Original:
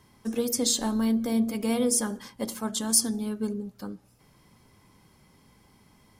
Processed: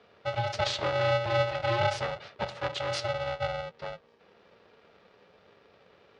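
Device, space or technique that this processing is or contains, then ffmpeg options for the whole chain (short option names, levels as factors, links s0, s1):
ring modulator pedal into a guitar cabinet: -af "aeval=exprs='val(0)*sgn(sin(2*PI*350*n/s))':c=same,highpass=92,equalizer=f=140:t=q:w=4:g=-9,equalizer=f=260:t=q:w=4:g=-10,equalizer=f=410:t=q:w=4:g=6,lowpass=f=4100:w=0.5412,lowpass=f=4100:w=1.3066"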